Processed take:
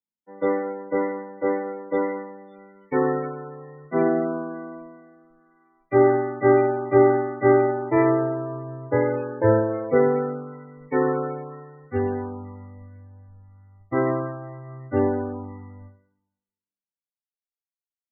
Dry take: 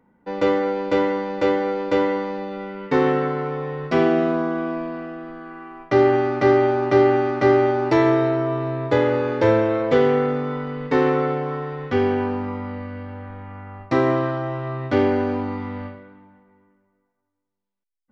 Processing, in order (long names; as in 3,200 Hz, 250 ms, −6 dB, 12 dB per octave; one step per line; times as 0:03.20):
spectral peaks only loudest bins 32
multiband upward and downward expander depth 100%
level −4 dB